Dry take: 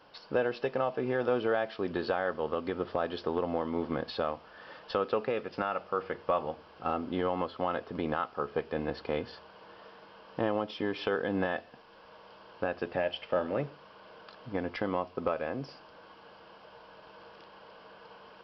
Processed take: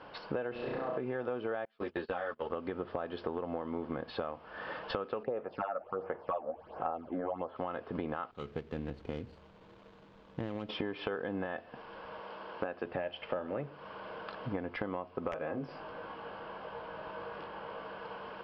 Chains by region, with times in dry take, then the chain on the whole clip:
0.52–0.98 high shelf 3400 Hz -11.5 dB + negative-ratio compressor -34 dBFS, ratio -0.5 + flutter echo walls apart 5.7 m, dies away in 1.1 s
1.65–2.5 gate -35 dBFS, range -27 dB + high shelf 2200 Hz +10.5 dB + ensemble effect
5.23–7.56 bell 690 Hz +10.5 dB 1.3 oct + phaser stages 8, 1.4 Hz, lowest notch 110–4900 Hz + harmonic tremolo 1.5 Hz, depth 50%, crossover 670 Hz
8.31–10.69 median filter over 25 samples + bell 750 Hz -14.5 dB 2.9 oct
12.2–12.85 HPF 54 Hz + bell 110 Hz -14 dB 0.6 oct
15.31–17.85 high shelf 3900 Hz -6 dB + doubler 19 ms -4.5 dB + wrapped overs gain 20.5 dB
whole clip: LPF 2700 Hz 12 dB/oct; compressor 6:1, threshold -42 dBFS; gain +8 dB

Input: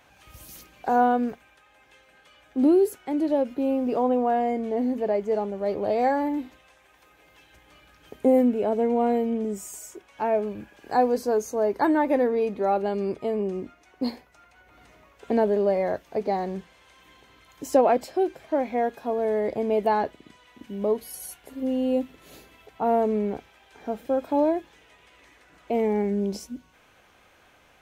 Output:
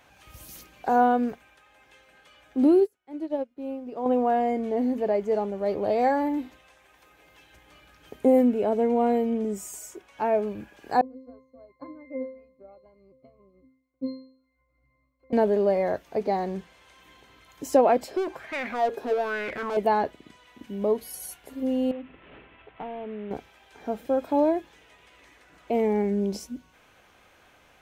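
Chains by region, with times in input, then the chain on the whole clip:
2.8–4.06 high shelf 8700 Hz -4.5 dB + upward expander 2.5:1, over -36 dBFS
11.01–15.33 transient shaper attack +9 dB, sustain -10 dB + octave resonator C, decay 0.53 s
18.11–19.77 overloaded stage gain 33 dB + LFO bell 1.1 Hz 390–2200 Hz +17 dB
21.91–23.31 CVSD 16 kbps + compressor 12:1, threshold -32 dBFS
whole clip: dry

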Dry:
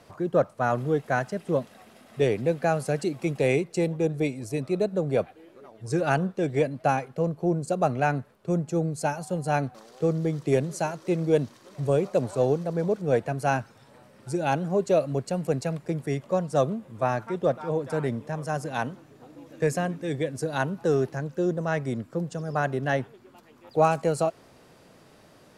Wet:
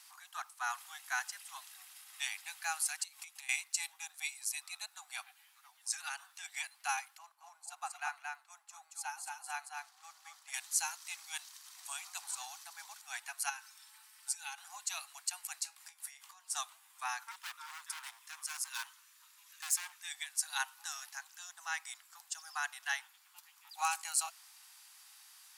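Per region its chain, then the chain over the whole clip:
2.96–3.49 low shelf 120 Hz +10.5 dB + compressor, threshold -34 dBFS
5.94–6.45 HPF 480 Hz 6 dB/oct + compressor 10:1, threshold -27 dBFS + mismatched tape noise reduction encoder only
7.18–10.54 high shelf 2000 Hz -11 dB + echo 0.225 s -3.5 dB + mismatched tape noise reduction decoder only
13.49–14.58 bell 560 Hz -12 dB 0.53 oct + compressor 10:1, threshold -31 dBFS + comb 4.6 ms, depth 51%
15.62–16.55 transient shaper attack +2 dB, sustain +7 dB + compressor 10:1, threshold -32 dBFS + resonator 69 Hz, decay 0.18 s, mix 70%
17.31–20.02 Butterworth band-stop 770 Hz, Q 2.8 + hard clip -29.5 dBFS
whole clip: steep high-pass 770 Hz 96 dB/oct; differentiator; gain +7.5 dB

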